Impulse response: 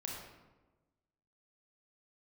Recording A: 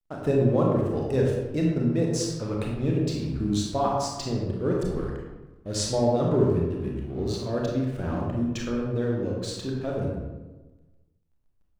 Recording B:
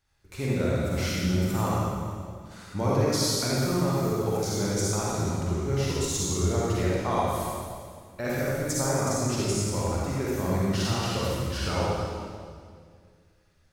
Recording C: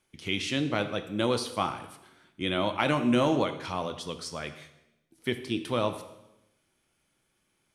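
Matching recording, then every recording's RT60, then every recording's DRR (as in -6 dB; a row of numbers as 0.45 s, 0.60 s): A; 1.2 s, 2.1 s, 0.90 s; -2.0 dB, -7.0 dB, 8.0 dB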